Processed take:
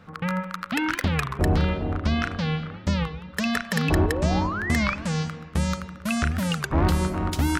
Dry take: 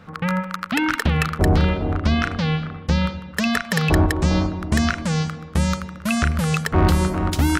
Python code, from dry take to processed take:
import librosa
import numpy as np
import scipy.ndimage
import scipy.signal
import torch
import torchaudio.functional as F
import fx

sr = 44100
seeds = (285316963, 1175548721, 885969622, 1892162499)

y = fx.spec_paint(x, sr, seeds[0], shape='rise', start_s=3.75, length_s=1.21, low_hz=210.0, high_hz=3000.0, level_db=-26.0)
y = fx.rev_spring(y, sr, rt60_s=2.3, pass_ms=(34,), chirp_ms=45, drr_db=17.5)
y = fx.record_warp(y, sr, rpm=33.33, depth_cents=250.0)
y = F.gain(torch.from_numpy(y), -4.5).numpy()